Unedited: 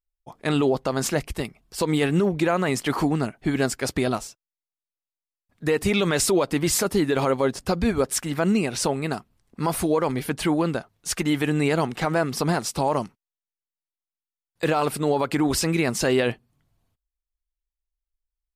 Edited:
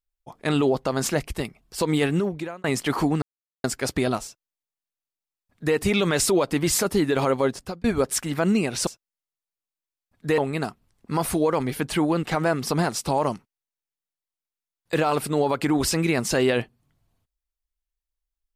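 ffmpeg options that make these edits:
-filter_complex "[0:a]asplit=8[a][b][c][d][e][f][g][h];[a]atrim=end=2.64,asetpts=PTS-STARTPTS,afade=t=out:st=2.04:d=0.6[i];[b]atrim=start=2.64:end=3.22,asetpts=PTS-STARTPTS,afade=t=in:d=0.004:c=hsin,afade=t=out:st=0.576:d=0.004:c=hsin[j];[c]atrim=start=3.22:end=3.64,asetpts=PTS-STARTPTS,volume=0[k];[d]atrim=start=3.64:end=7.84,asetpts=PTS-STARTPTS,afade=t=in:d=0.004:c=hsin,afade=t=out:st=3.82:d=0.38[l];[e]atrim=start=7.84:end=8.872,asetpts=PTS-STARTPTS,afade=t=in:d=0.004:c=hsin[m];[f]atrim=start=4.248:end=5.762[n];[g]atrim=start=8.868:end=10.722[o];[h]atrim=start=11.928[p];[i][j][k][l][m]concat=n=5:v=0:a=1[q];[q][n]acrossfade=d=0.004:c1=hsin:c2=hsin[r];[r][o]acrossfade=d=0.004:c1=hsin:c2=hsin[s];[s][p]acrossfade=d=0.004:c1=hsin:c2=hsin"

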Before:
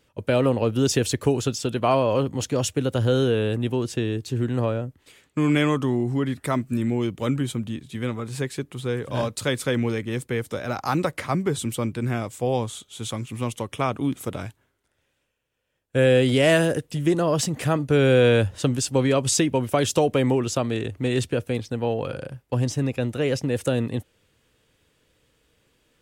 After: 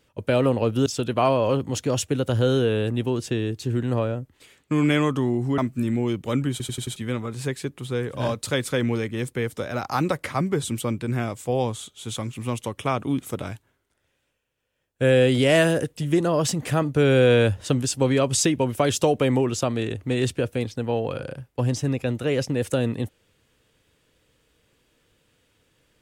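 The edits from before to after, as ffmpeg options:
-filter_complex "[0:a]asplit=8[a][b][c][d][e][f][g][h];[a]atrim=end=0.862[i];[b]atrim=start=1.518:end=6.242[j];[c]atrim=start=6.518:end=7.542[k];[d]atrim=start=7.448:end=7.542[l];[e]atrim=start=7.448:end=7.542[m];[f]atrim=start=7.448:end=7.542[n];[g]atrim=start=7.448:end=7.542[o];[h]atrim=start=7.898[p];[i][j]acrossfade=d=0.004:c1=hsin:c2=hsin[q];[q][k]acrossfade=d=0.004:c1=hsin:c2=hsin[r];[r][l]acrossfade=d=0.004:c1=hsin:c2=hsin[s];[s][m]acrossfade=d=0.004:c1=hsin:c2=hsin[t];[t][n]acrossfade=d=0.004:c1=hsin:c2=hsin[u];[u][o]acrossfade=d=0.004:c1=hsin:c2=hsin[v];[v][p]acrossfade=d=0.004:c1=hsin:c2=hsin"

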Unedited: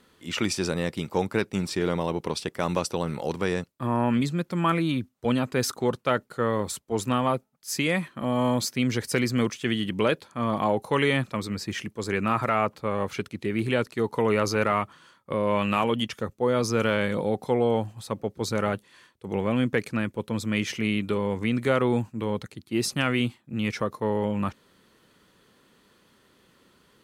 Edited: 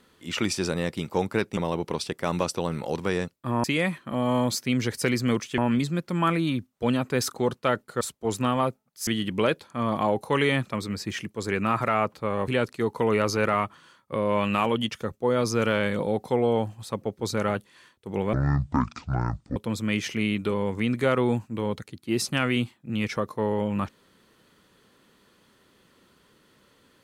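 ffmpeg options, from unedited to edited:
-filter_complex "[0:a]asplit=9[a][b][c][d][e][f][g][h][i];[a]atrim=end=1.572[j];[b]atrim=start=1.928:end=4.002[k];[c]atrim=start=7.738:end=9.682[l];[d]atrim=start=3.998:end=6.432[m];[e]atrim=start=6.678:end=7.742[n];[f]atrim=start=9.678:end=13.092[o];[g]atrim=start=13.658:end=19.514[p];[h]atrim=start=19.51:end=20.2,asetpts=PTS-STARTPTS,asetrate=24696,aresample=44100,atrim=end_sample=54337,asetpts=PTS-STARTPTS[q];[i]atrim=start=20.196[r];[j][k]acrossfade=d=0.004:c1=hsin:c2=hsin[s];[s][l]acrossfade=d=0.004:c1=hsin:c2=hsin[t];[t][m]acrossfade=d=0.004:c1=hsin:c2=hsin[u];[u][n]acrossfade=d=0.004:c1=hsin:c2=hsin[v];[v][o]acrossfade=d=0.004:c1=hsin:c2=hsin[w];[w][p]acrossfade=d=0.004:c1=hsin:c2=hsin[x];[x][q]acrossfade=d=0.004:c1=hsin:c2=hsin[y];[y][r]acrossfade=d=0.004:c1=hsin:c2=hsin"

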